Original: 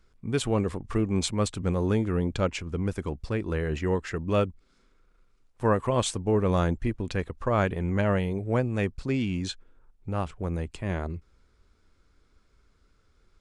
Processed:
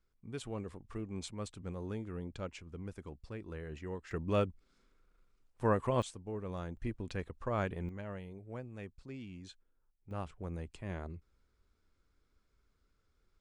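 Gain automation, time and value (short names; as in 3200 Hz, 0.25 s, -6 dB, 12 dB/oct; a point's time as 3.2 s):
-15.5 dB
from 4.11 s -6.5 dB
from 6.02 s -17 dB
from 6.77 s -10 dB
from 7.89 s -19 dB
from 10.11 s -11 dB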